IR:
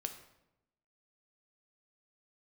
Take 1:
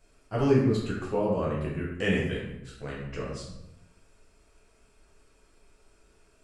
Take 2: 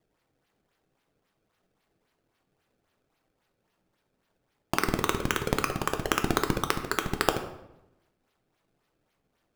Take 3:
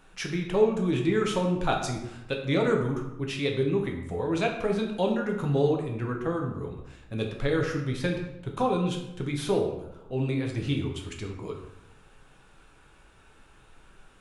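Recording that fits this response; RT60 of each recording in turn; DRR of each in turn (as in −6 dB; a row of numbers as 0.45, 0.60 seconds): 2; 0.90, 0.90, 0.90 seconds; −6.0, 6.0, 1.0 decibels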